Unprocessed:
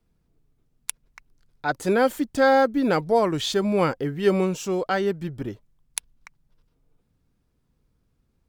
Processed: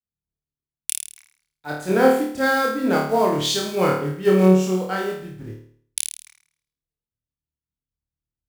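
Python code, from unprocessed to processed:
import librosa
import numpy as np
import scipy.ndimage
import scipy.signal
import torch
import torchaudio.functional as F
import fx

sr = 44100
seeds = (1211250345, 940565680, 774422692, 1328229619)

p1 = fx.block_float(x, sr, bits=5)
p2 = scipy.signal.sosfilt(scipy.signal.butter(2, 51.0, 'highpass', fs=sr, output='sos'), p1)
p3 = p2 + fx.room_flutter(p2, sr, wall_m=4.6, rt60_s=0.73, dry=0)
p4 = fx.band_widen(p3, sr, depth_pct=70)
y = F.gain(torch.from_numpy(p4), -2.0).numpy()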